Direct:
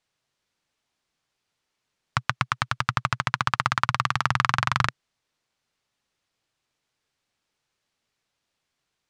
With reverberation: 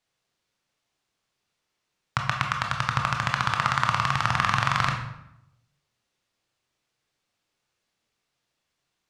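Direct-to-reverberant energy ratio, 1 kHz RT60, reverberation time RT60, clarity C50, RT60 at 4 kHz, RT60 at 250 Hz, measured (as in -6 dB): 2.0 dB, 0.80 s, 0.80 s, 5.5 dB, 0.60 s, 1.0 s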